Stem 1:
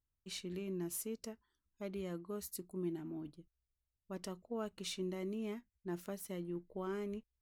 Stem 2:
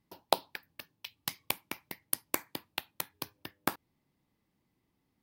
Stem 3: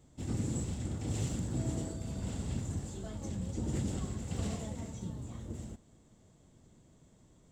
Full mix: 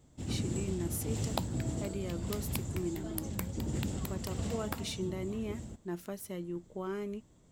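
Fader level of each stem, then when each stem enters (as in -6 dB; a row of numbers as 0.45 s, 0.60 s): +3.0 dB, -8.5 dB, -0.5 dB; 0.00 s, 1.05 s, 0.00 s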